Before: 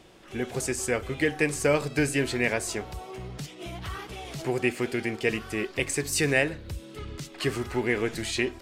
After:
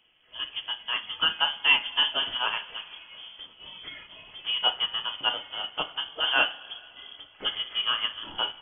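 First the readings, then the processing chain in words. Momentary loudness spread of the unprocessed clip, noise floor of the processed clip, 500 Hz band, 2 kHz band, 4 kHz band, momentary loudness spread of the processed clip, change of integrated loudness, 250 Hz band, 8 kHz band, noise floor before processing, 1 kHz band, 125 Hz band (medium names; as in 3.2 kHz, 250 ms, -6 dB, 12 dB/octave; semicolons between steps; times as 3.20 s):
14 LU, -55 dBFS, -14.5 dB, 0.0 dB, +13.5 dB, 20 LU, +1.5 dB, -21.0 dB, under -40 dB, -47 dBFS, +4.5 dB, under -20 dB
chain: two-slope reverb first 0.3 s, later 3.4 s, from -17 dB, DRR 2.5 dB; frequency inversion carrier 3.3 kHz; upward expansion 1.5:1, over -43 dBFS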